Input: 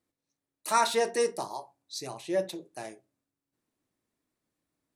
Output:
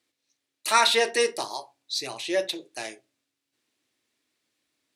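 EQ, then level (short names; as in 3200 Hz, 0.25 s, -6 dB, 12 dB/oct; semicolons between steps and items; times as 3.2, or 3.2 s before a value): weighting filter D; dynamic EQ 6300 Hz, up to -6 dB, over -39 dBFS, Q 1.2; bell 180 Hz -14 dB 0.21 oct; +3.0 dB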